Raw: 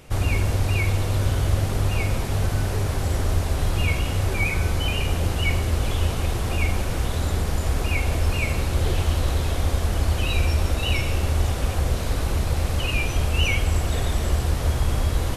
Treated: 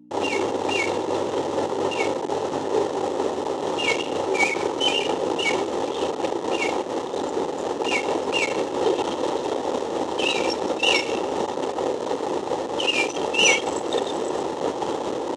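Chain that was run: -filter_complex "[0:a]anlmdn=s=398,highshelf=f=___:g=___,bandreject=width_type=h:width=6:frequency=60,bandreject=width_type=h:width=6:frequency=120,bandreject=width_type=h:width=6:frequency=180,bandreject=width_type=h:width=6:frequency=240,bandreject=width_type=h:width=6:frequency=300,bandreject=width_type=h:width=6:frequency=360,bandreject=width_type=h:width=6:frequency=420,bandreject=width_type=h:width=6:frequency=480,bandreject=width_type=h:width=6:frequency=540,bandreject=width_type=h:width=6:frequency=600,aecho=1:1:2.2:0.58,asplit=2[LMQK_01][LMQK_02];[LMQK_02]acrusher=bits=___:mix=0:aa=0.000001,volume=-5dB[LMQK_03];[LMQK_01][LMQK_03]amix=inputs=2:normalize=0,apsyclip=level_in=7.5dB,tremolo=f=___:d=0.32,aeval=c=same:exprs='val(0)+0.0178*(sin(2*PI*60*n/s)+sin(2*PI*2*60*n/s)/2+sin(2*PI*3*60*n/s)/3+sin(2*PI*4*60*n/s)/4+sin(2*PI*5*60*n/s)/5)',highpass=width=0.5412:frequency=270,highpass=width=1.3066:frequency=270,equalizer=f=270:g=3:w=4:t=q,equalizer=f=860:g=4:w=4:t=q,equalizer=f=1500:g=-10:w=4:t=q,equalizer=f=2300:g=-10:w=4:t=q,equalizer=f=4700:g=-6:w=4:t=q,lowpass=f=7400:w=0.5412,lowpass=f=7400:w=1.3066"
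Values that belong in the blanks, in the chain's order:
3800, 8.5, 4, 4.3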